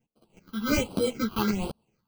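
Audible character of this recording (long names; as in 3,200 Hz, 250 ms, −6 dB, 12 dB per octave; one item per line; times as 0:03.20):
aliases and images of a low sample rate 1,800 Hz, jitter 0%
phaser sweep stages 6, 1.3 Hz, lowest notch 560–2,000 Hz
tremolo saw up 2 Hz, depth 55%
a shimmering, thickened sound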